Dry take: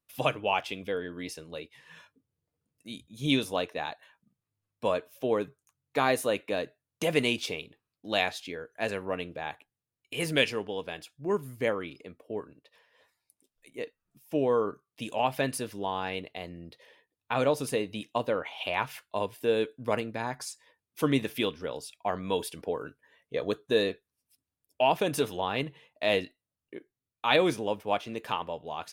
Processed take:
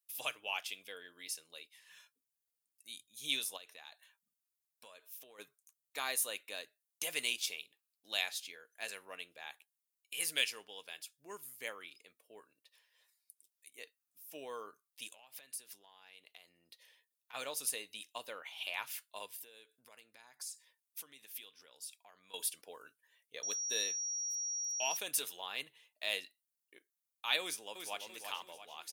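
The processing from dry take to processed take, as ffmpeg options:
-filter_complex "[0:a]asplit=3[s0][s1][s2];[s0]afade=t=out:st=3.56:d=0.02[s3];[s1]acompressor=threshold=0.0141:ratio=6:attack=3.2:release=140:knee=1:detection=peak,afade=t=in:st=3.56:d=0.02,afade=t=out:st=5.38:d=0.02[s4];[s2]afade=t=in:st=5.38:d=0.02[s5];[s3][s4][s5]amix=inputs=3:normalize=0,asplit=3[s6][s7][s8];[s6]afade=t=out:st=15.07:d=0.02[s9];[s7]acompressor=threshold=0.00794:ratio=10:attack=3.2:release=140:knee=1:detection=peak,afade=t=in:st=15.07:d=0.02,afade=t=out:st=17.33:d=0.02[s10];[s8]afade=t=in:st=17.33:d=0.02[s11];[s9][s10][s11]amix=inputs=3:normalize=0,asettb=1/sr,asplit=3[s12][s13][s14];[s12]atrim=end=19.334[s15];[s13]atrim=start=19.33:end=22.34,asetpts=PTS-STARTPTS,afade=t=in:d=0.004:c=qsin,afade=t=out:st=3.006:d=0.004:c=qsin,acompressor=threshold=0.00562:ratio=3:attack=3.2:release=140:knee=1:detection=peak[s16];[s14]atrim=start=22.336[s17];[s15][s16]acrossfade=d=0.004:c1=hsin:c2=qsin[s18];[s18][s17]acrossfade=d=0.004:c1=qsin:c2=hsin,asettb=1/sr,asplit=3[s19][s20][s21];[s19]atrim=end=23.434[s22];[s20]atrim=start=23.43:end=24.97,asetpts=PTS-STARTPTS,afade=t=in:d=0.004:c=qsin,afade=t=out:st=1.536:d=0.004:c=qsin,aeval=exprs='val(0)+0.0158*sin(2*PI*5700*n/s)':c=same[s23];[s21]atrim=start=24.966[s24];[s22][s23]acrossfade=d=0.004:c1=hsin:c2=qsin[s25];[s25][s24]acrossfade=d=0.004:c1=qsin:c2=hsin,asplit=2[s26][s27];[s27]afade=t=in:st=27.41:d=0.01,afade=t=out:st=28.09:d=0.01,aecho=0:1:340|680|1020|1360|1700:0.501187|0.225534|0.10149|0.0456707|0.0205518[s28];[s26][s28]amix=inputs=2:normalize=0,aderivative,volume=1.33"

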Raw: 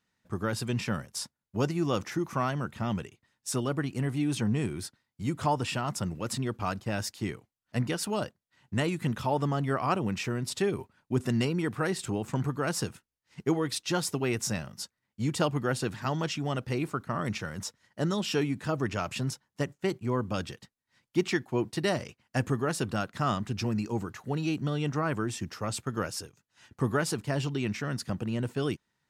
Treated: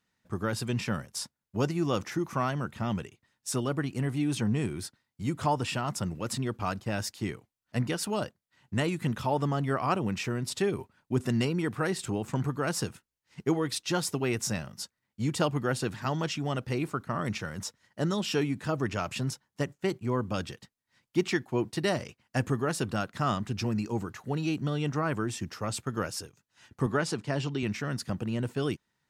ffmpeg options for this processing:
-filter_complex "[0:a]asettb=1/sr,asplit=3[s0][s1][s2];[s0]atrim=end=26.864[s3];[s1]atrim=start=26.86:end=27.63,asetpts=PTS-STARTPTS,afade=t=in:d=0.004:c=qsin,afade=t=out:st=0.766:d=0.004:c=qsin,highpass=110,lowpass=7400[s4];[s2]atrim=start=27.626[s5];[s3][s4]acrossfade=d=0.004:c1=hsin:c2=qsin[s6];[s6][s5]acrossfade=d=0.004:c1=qsin:c2=hsin"

